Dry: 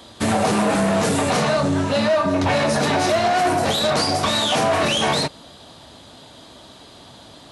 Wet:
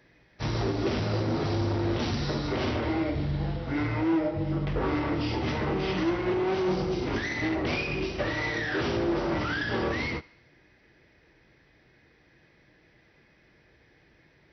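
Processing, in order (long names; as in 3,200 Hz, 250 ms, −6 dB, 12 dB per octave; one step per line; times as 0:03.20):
change of speed 0.517×
feedback echo with a high-pass in the loop 71 ms, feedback 62%, high-pass 710 Hz, level −15 dB
expander for the loud parts 1.5 to 1, over −34 dBFS
level −7.5 dB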